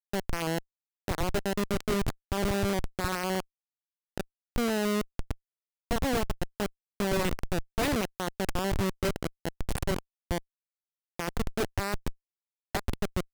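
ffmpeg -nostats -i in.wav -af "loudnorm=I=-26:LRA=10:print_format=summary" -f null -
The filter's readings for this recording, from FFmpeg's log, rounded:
Input Integrated:    -32.4 LUFS
Input True Peak:     -17.9 dBTP
Input LRA:             4.9 LU
Input Threshold:     -42.7 LUFS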